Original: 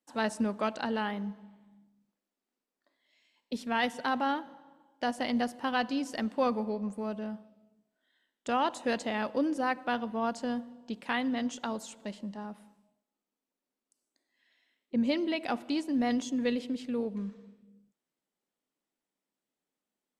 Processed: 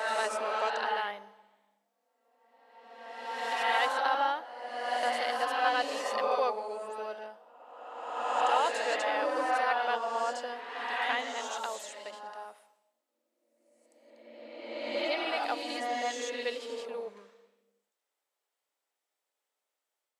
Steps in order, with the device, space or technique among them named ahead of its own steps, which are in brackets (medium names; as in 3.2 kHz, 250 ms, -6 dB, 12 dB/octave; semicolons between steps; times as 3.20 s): ghost voice (reverse; reverberation RT60 1.9 s, pre-delay 62 ms, DRR -2 dB; reverse; high-pass 480 Hz 24 dB/octave)